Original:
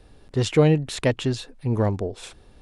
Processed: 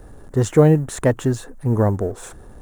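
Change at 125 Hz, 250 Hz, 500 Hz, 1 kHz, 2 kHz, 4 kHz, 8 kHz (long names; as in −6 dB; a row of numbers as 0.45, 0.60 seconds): +4.5, +4.5, +4.5, +4.5, 0.0, −8.0, +4.0 decibels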